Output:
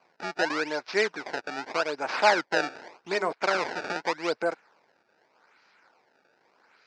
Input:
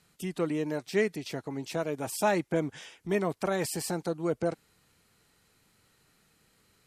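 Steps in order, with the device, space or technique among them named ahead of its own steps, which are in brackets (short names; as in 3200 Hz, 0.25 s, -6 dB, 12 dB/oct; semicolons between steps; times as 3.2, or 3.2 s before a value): 2.45–3.33 de-hum 67.2 Hz, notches 12; circuit-bent sampling toy (decimation with a swept rate 24×, swing 160% 0.84 Hz; speaker cabinet 450–5700 Hz, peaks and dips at 900 Hz +5 dB, 1500 Hz +8 dB, 2300 Hz +5 dB, 3200 Hz -6 dB, 4900 Hz +5 dB); gain +4 dB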